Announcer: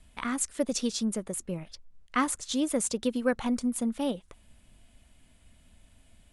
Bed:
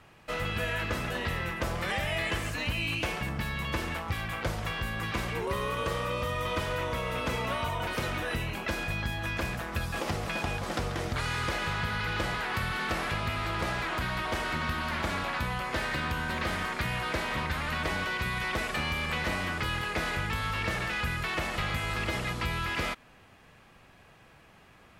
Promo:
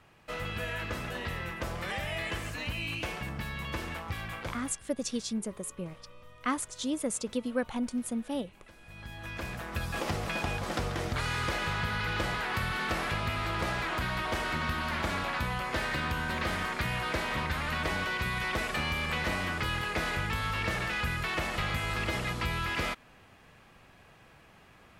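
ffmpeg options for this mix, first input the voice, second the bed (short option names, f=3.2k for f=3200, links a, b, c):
-filter_complex "[0:a]adelay=4300,volume=-4dB[a];[1:a]volume=19dB,afade=t=out:st=4.31:d=0.49:silence=0.105925,afade=t=in:st=8.82:d=1.18:silence=0.0707946[b];[a][b]amix=inputs=2:normalize=0"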